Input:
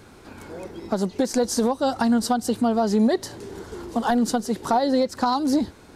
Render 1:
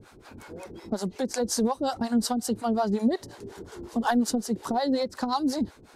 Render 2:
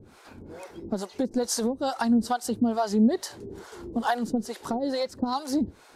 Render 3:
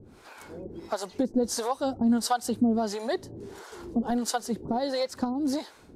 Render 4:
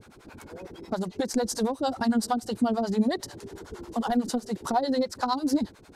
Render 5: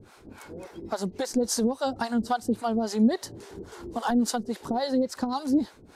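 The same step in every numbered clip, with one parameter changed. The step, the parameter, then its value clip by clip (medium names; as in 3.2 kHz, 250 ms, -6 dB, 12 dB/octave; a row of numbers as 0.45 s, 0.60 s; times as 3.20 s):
harmonic tremolo, rate: 5.5 Hz, 2.3 Hz, 1.5 Hz, 11 Hz, 3.6 Hz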